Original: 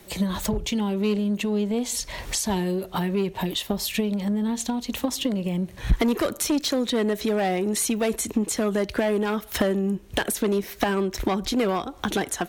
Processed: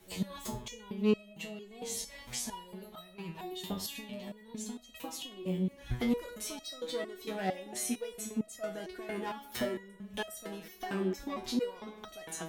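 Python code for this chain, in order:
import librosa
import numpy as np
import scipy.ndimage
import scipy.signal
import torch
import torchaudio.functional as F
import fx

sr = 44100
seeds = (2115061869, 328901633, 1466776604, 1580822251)

y = fx.rev_spring(x, sr, rt60_s=1.8, pass_ms=(46, 54), chirp_ms=75, drr_db=10.0)
y = fx.resonator_held(y, sr, hz=4.4, low_hz=93.0, high_hz=640.0)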